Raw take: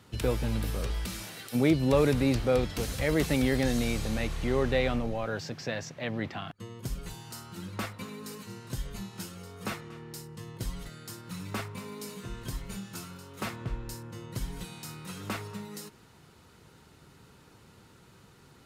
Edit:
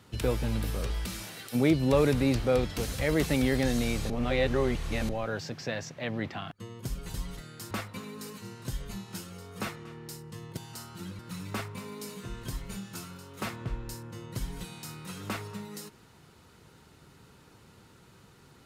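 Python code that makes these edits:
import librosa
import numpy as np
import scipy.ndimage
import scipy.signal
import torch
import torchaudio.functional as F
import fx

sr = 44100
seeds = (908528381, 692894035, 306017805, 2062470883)

y = fx.edit(x, sr, fx.reverse_span(start_s=4.1, length_s=0.99),
    fx.swap(start_s=7.14, length_s=0.62, other_s=10.62, other_length_s=0.57), tone=tone)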